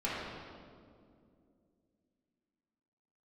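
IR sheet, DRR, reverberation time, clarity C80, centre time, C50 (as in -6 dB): -9.0 dB, 2.4 s, 0.0 dB, 126 ms, -2.5 dB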